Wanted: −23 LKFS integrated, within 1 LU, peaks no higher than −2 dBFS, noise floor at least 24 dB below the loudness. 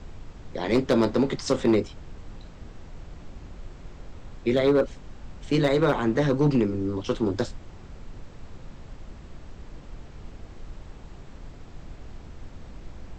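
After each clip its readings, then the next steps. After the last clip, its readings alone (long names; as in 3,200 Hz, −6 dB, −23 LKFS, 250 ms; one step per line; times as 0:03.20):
share of clipped samples 0.5%; peaks flattened at −14.0 dBFS; background noise floor −45 dBFS; target noise floor −49 dBFS; integrated loudness −24.5 LKFS; sample peak −14.0 dBFS; target loudness −23.0 LKFS
→ clipped peaks rebuilt −14 dBFS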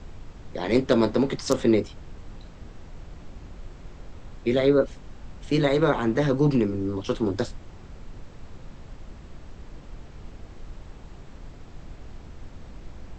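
share of clipped samples 0.0%; background noise floor −45 dBFS; target noise floor −48 dBFS
→ noise reduction from a noise print 6 dB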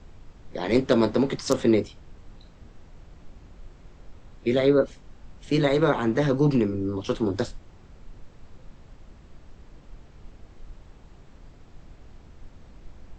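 background noise floor −51 dBFS; integrated loudness −24.0 LKFS; sample peak −5.0 dBFS; target loudness −23.0 LKFS
→ level +1 dB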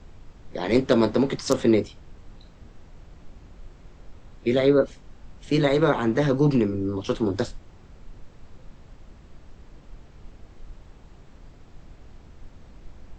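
integrated loudness −23.0 LKFS; sample peak −4.0 dBFS; background noise floor −50 dBFS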